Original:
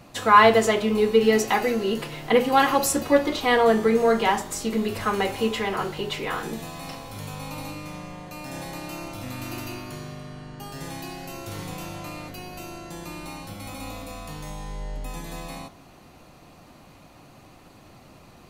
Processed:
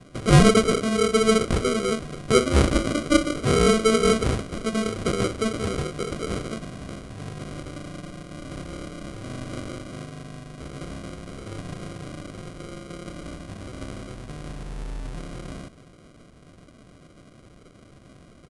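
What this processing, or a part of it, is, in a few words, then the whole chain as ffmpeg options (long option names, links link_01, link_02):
crushed at another speed: -af "asetrate=88200,aresample=44100,acrusher=samples=25:mix=1:aa=0.000001,asetrate=22050,aresample=44100"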